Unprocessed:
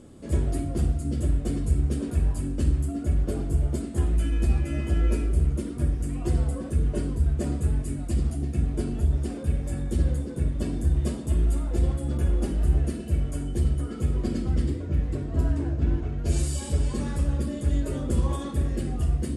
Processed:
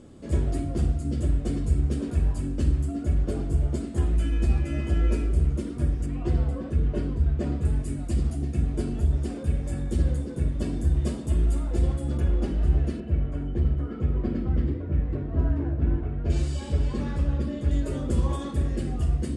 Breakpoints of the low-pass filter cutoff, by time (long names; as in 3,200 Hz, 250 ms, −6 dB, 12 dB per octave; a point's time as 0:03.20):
7,800 Hz
from 0:06.06 4,100 Hz
from 0:07.65 9,300 Hz
from 0:12.20 5,000 Hz
from 0:13.00 2,200 Hz
from 0:16.30 4,300 Hz
from 0:17.71 8,300 Hz